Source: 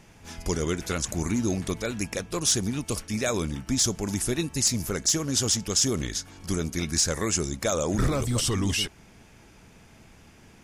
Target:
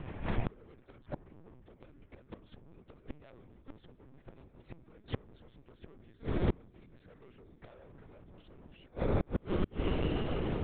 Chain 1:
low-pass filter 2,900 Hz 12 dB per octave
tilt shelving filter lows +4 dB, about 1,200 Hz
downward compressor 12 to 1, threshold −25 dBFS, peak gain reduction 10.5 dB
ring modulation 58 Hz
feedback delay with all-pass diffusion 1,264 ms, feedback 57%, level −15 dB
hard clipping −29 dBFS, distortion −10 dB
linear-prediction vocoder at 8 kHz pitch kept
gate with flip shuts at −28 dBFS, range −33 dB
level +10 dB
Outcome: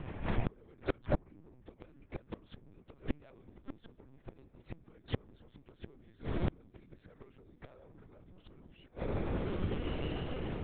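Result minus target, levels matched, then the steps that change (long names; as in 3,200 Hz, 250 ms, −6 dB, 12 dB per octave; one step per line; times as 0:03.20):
downward compressor: peak gain reduction +10.5 dB
remove: downward compressor 12 to 1, threshold −25 dBFS, peak gain reduction 10.5 dB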